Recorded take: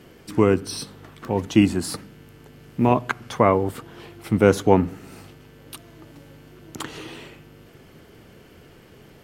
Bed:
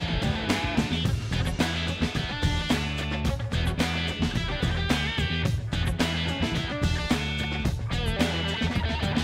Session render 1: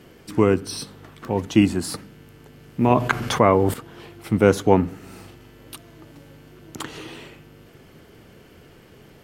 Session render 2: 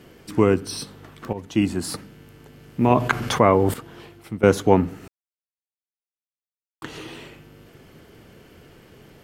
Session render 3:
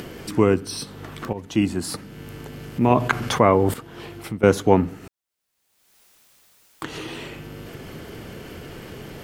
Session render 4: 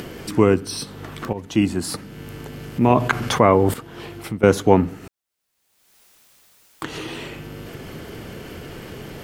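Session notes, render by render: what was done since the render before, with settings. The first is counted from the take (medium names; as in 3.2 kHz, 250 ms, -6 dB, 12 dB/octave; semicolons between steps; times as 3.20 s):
2.90–3.74 s: level flattener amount 50%; 4.98–5.74 s: doubling 43 ms -6 dB
1.33–1.90 s: fade in, from -12.5 dB; 3.95–4.43 s: fade out, to -16 dB; 5.08–6.82 s: mute
upward compressor, threshold -26 dBFS
trim +2 dB; peak limiter -1 dBFS, peak gain reduction 1.5 dB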